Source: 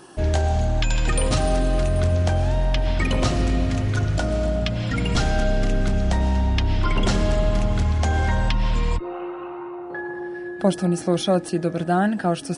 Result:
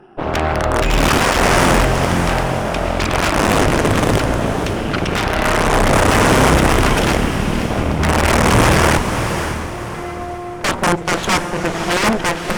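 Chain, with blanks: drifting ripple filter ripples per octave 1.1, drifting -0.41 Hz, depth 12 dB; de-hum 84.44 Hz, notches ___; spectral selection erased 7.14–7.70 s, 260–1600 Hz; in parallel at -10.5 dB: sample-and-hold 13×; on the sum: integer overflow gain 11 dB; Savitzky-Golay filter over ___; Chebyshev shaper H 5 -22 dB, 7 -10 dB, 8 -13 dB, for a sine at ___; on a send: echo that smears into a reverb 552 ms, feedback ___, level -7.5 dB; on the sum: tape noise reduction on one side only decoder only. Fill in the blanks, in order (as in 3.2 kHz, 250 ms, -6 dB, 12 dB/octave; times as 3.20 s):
28, 25 samples, -7.5 dBFS, 44%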